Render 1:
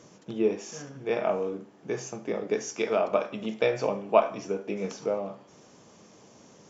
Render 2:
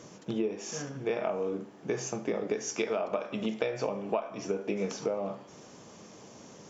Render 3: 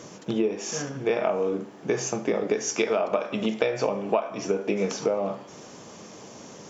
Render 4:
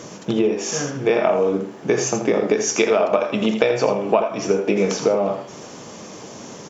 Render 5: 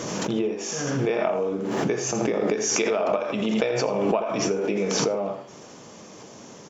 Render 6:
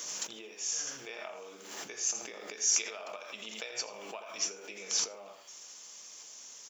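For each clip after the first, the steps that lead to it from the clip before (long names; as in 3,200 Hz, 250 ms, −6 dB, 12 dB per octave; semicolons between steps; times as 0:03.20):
downward compressor 20 to 1, threshold −30 dBFS, peak gain reduction 17.5 dB; level +3.5 dB
low-shelf EQ 190 Hz −3.5 dB; level +7 dB
single-tap delay 83 ms −9 dB; level +6.5 dB
background raised ahead of every attack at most 24 dB per second; level −7.5 dB
first difference; one half of a high-frequency compander encoder only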